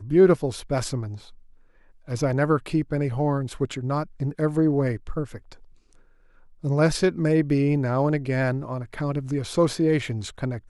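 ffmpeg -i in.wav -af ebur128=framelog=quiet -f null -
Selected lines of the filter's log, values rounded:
Integrated loudness:
  I:         -24.2 LUFS
  Threshold: -35.1 LUFS
Loudness range:
  LRA:         3.3 LU
  Threshold: -45.3 LUFS
  LRA low:   -27.1 LUFS
  LRA high:  -23.7 LUFS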